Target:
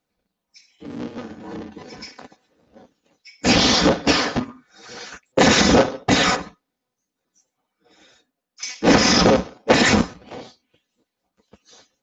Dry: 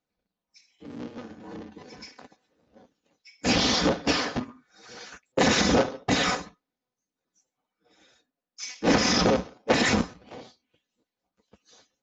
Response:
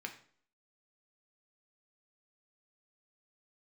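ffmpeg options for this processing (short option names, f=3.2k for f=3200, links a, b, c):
-filter_complex "[0:a]asettb=1/sr,asplit=3[a][b][c];[a]atrim=end=6.364[d];[b]atrim=start=6.36:end=8.63,asetpts=PTS-STARTPTS,afade=t=in:d=0.004:c=qsin,afade=t=out:st=2.266:d=0.004:c=qsin,acrossover=split=3400[e][f];[f]acompressor=threshold=-55dB:ratio=4:attack=1:release=60[g];[e][g]amix=inputs=2:normalize=0[h];[c]atrim=start=8.626[i];[d][h]acrossfade=d=0.004:c1=hsin:c2=qsin[j];[j][i]acrossfade=d=0.004:c1=qsin:c2=hsin,volume=7dB"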